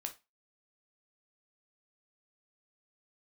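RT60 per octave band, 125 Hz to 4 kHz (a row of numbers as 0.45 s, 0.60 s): 0.20 s, 0.25 s, 0.25 s, 0.25 s, 0.25 s, 0.25 s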